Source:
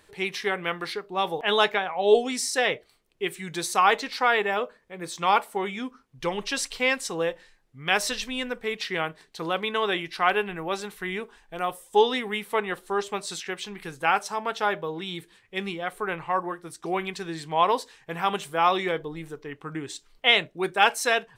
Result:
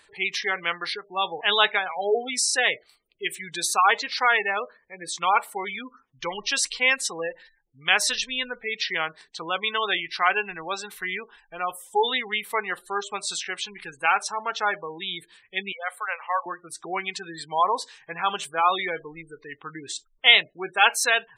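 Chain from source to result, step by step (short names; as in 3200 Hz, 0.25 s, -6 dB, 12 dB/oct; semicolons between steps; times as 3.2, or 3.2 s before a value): spectral gate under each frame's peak -20 dB strong; 15.72–16.46 elliptic high-pass 510 Hz, stop band 40 dB; tilt shelf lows -7.5 dB, about 720 Hz; gain -1.5 dB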